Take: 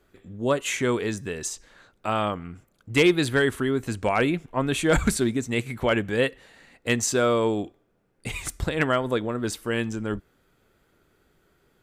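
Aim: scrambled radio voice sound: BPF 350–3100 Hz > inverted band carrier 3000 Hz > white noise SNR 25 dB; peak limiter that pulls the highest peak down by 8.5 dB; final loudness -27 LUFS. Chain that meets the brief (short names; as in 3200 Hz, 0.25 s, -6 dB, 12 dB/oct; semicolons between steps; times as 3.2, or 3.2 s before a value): limiter -19.5 dBFS; BPF 350–3100 Hz; inverted band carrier 3000 Hz; white noise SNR 25 dB; gain +3.5 dB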